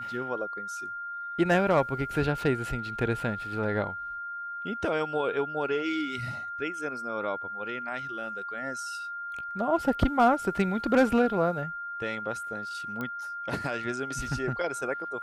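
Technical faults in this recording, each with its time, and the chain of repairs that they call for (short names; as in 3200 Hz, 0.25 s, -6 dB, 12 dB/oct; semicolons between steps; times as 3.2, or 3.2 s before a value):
tone 1400 Hz -34 dBFS
13.01 pop -21 dBFS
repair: de-click; notch 1400 Hz, Q 30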